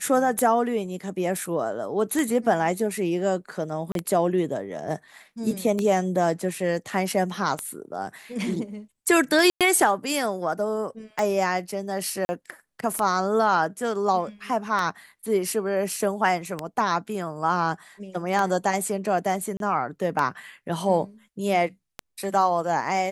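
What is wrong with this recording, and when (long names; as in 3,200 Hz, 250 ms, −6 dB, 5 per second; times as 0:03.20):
scratch tick 33 1/3 rpm −12 dBFS
0:03.92–0:03.95: drop-out 32 ms
0:09.50–0:09.61: drop-out 107 ms
0:12.25–0:12.29: drop-out 40 ms
0:19.57–0:19.60: drop-out 32 ms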